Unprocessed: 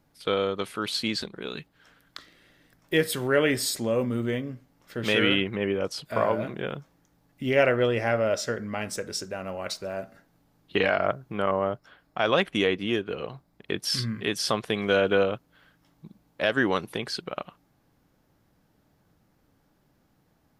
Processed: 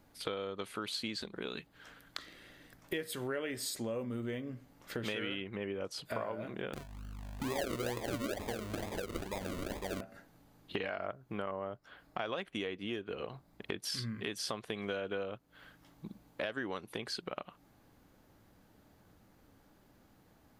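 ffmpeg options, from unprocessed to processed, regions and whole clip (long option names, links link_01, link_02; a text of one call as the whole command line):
ffmpeg -i in.wav -filter_complex "[0:a]asettb=1/sr,asplit=3[link_01][link_02][link_03];[link_01]atrim=end=6.734[link_04];[link_02]atrim=start=6.73:end=10.01,asetpts=PTS-STARTPTS,afade=type=in:duration=0.004:curve=qsin,afade=type=out:start_time=3.276:duration=0.004:curve=qsin,asplit=2[link_05][link_06];[link_06]adelay=41,volume=-4dB[link_07];[link_05][link_07]amix=inputs=2:normalize=0,atrim=end_sample=144648,aeval=exprs='val(0)+0.00501*(sin(2*PI*50*n/s)+sin(2*PI*2*50*n/s)/2+sin(2*PI*3*50*n/s)/3+sin(2*PI*4*50*n/s)/4+sin(2*PI*5*50*n/s)/5)':channel_layout=same,acrusher=samples=42:mix=1:aa=0.000001:lfo=1:lforange=25.2:lforate=2.2[link_08];[link_03]atrim=start=10.006[link_09];[link_04][link_08]acrossfade=duration=0.004:curve1=hsin:curve2=qsin[link_10];[link_10][link_09]acrossfade=duration=0.004:curve1=qsin:curve2=hsin,equalizer=frequency=150:width=6.6:gain=-9.5,bandreject=frequency=5400:width=17,acompressor=threshold=-40dB:ratio=5,volume=3dB" out.wav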